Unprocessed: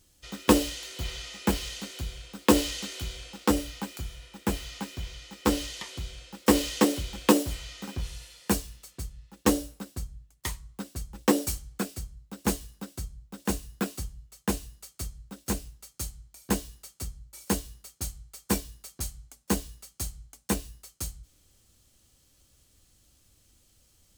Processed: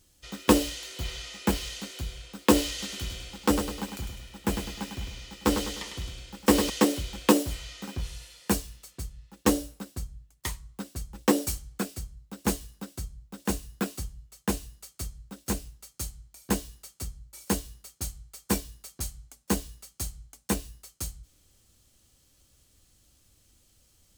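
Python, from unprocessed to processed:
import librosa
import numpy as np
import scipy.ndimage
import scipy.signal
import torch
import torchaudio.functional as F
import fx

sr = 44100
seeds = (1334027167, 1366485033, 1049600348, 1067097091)

y = fx.echo_feedback(x, sr, ms=102, feedback_pct=44, wet_db=-7.0, at=(2.69, 6.7))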